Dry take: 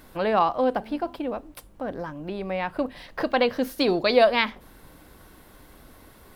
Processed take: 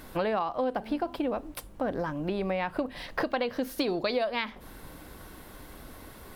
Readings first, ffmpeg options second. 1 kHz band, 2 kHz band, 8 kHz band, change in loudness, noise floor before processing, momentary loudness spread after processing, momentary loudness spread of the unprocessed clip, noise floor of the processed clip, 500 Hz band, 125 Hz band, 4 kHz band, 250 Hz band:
−7.0 dB, −6.5 dB, can't be measured, −6.0 dB, −52 dBFS, 18 LU, 15 LU, −48 dBFS, −6.5 dB, −0.5 dB, −7.5 dB, −3.5 dB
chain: -af "acompressor=threshold=-29dB:ratio=10,volume=3.5dB" -ar 48000 -c:a libvorbis -b:a 192k

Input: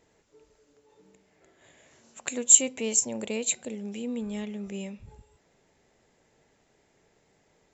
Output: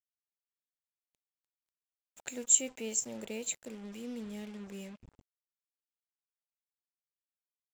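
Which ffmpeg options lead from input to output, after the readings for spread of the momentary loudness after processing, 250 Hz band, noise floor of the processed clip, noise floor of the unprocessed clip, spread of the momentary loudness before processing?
20 LU, −8.5 dB, below −85 dBFS, −68 dBFS, 20 LU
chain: -af "asuperstop=centerf=1100:order=8:qfactor=5.1,acrusher=bits=6:mix=0:aa=0.5,volume=-8.5dB"

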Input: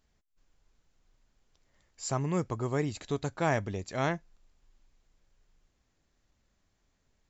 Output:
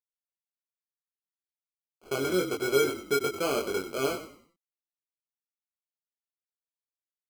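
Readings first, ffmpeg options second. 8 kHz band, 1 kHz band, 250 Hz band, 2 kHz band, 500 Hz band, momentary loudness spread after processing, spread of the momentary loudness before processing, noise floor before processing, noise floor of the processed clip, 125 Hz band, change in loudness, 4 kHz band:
can't be measured, 0.0 dB, +1.0 dB, +4.0 dB, +6.0 dB, 6 LU, 6 LU, −75 dBFS, below −85 dBFS, −10.0 dB, +3.5 dB, +10.0 dB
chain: -filter_complex "[0:a]asplit=2[link_01][link_02];[link_02]acompressor=threshold=-41dB:ratio=8,volume=2dB[link_03];[link_01][link_03]amix=inputs=2:normalize=0,acrusher=bits=4:mix=0:aa=0.000001,bandpass=frequency=420:width_type=q:width=4.3:csg=0,acrusher=samples=24:mix=1:aa=0.000001,asplit=2[link_04][link_05];[link_05]adelay=22,volume=-2.5dB[link_06];[link_04][link_06]amix=inputs=2:normalize=0,asplit=5[link_07][link_08][link_09][link_10][link_11];[link_08]adelay=95,afreqshift=-41,volume=-11dB[link_12];[link_09]adelay=190,afreqshift=-82,volume=-20.4dB[link_13];[link_10]adelay=285,afreqshift=-123,volume=-29.7dB[link_14];[link_11]adelay=380,afreqshift=-164,volume=-39.1dB[link_15];[link_07][link_12][link_13][link_14][link_15]amix=inputs=5:normalize=0,volume=6.5dB"

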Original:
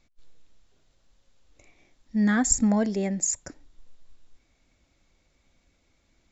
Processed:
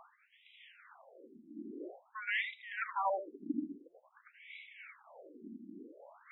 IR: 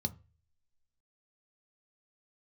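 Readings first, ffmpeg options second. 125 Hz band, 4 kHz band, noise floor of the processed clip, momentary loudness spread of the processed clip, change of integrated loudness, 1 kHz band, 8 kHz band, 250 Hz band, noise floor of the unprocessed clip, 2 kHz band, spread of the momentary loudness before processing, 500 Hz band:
below −25 dB, −4.5 dB, −70 dBFS, 23 LU, −16.0 dB, −1.0 dB, can't be measured, −18.0 dB, −69 dBFS, −2.5 dB, 8 LU, −9.0 dB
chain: -filter_complex "[0:a]equalizer=frequency=820:width_type=o:width=0.88:gain=-3.5,bandreject=frequency=3700:width=6,areverse,acompressor=threshold=-41dB:ratio=4,areverse,aeval=exprs='0.0376*sin(PI/2*3.55*val(0)/0.0376)':channel_layout=same,tremolo=f=3.3:d=0.63,asoftclip=type=tanh:threshold=-33dB,asplit=2[link_01][link_02];[1:a]atrim=start_sample=2205,adelay=82[link_03];[link_02][link_03]afir=irnorm=-1:irlink=0,volume=-7.5dB[link_04];[link_01][link_04]amix=inputs=2:normalize=0,aresample=11025,aresample=44100,afftfilt=real='re*between(b*sr/1024,250*pow(2800/250,0.5+0.5*sin(2*PI*0.49*pts/sr))/1.41,250*pow(2800/250,0.5+0.5*sin(2*PI*0.49*pts/sr))*1.41)':imag='im*between(b*sr/1024,250*pow(2800/250,0.5+0.5*sin(2*PI*0.49*pts/sr))/1.41,250*pow(2800/250,0.5+0.5*sin(2*PI*0.49*pts/sr))*1.41)':win_size=1024:overlap=0.75,volume=12dB"

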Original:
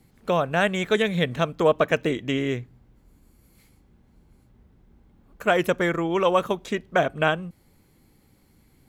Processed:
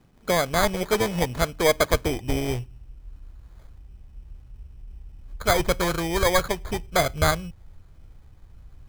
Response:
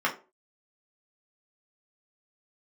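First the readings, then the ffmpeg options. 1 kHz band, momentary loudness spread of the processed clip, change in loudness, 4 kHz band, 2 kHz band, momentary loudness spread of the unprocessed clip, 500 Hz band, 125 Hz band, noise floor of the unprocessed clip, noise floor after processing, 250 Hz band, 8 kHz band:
0.0 dB, 8 LU, 0.0 dB, +3.0 dB, −1.0 dB, 7 LU, −1.5 dB, +1.5 dB, −60 dBFS, −52 dBFS, −2.5 dB, +13.5 dB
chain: -filter_complex "[0:a]asplit=2[link_01][link_02];[1:a]atrim=start_sample=2205[link_03];[link_02][link_03]afir=irnorm=-1:irlink=0,volume=-33.5dB[link_04];[link_01][link_04]amix=inputs=2:normalize=0,acrusher=samples=16:mix=1:aa=0.000001,asubboost=boost=12:cutoff=68"

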